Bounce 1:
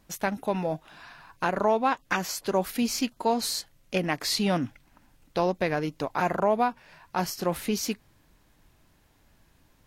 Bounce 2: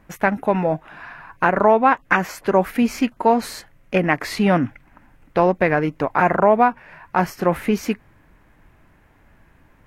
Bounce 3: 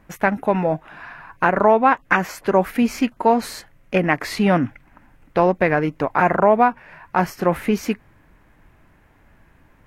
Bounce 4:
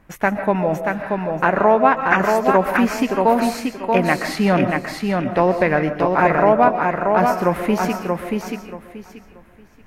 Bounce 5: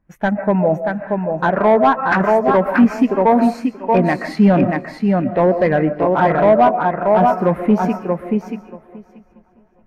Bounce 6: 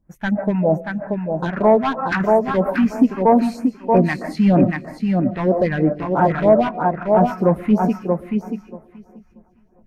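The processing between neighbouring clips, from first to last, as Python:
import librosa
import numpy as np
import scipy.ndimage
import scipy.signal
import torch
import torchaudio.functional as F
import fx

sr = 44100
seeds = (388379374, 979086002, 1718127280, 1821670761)

y1 = fx.high_shelf_res(x, sr, hz=2900.0, db=-11.5, q=1.5)
y1 = F.gain(torch.from_numpy(y1), 8.5).numpy()
y2 = y1
y3 = fx.echo_feedback(y2, sr, ms=632, feedback_pct=23, wet_db=-4)
y3 = fx.rev_freeverb(y3, sr, rt60_s=0.47, hf_ratio=0.4, predelay_ms=95, drr_db=9.0)
y4 = np.clip(10.0 ** (13.0 / 20.0) * y3, -1.0, 1.0) / 10.0 ** (13.0 / 20.0)
y4 = fx.echo_feedback(y4, sr, ms=835, feedback_pct=47, wet_db=-20.5)
y4 = fx.spectral_expand(y4, sr, expansion=1.5)
y4 = F.gain(torch.from_numpy(y4), 8.0).numpy()
y5 = fx.phaser_stages(y4, sr, stages=2, low_hz=470.0, high_hz=3700.0, hz=3.1, feedback_pct=25)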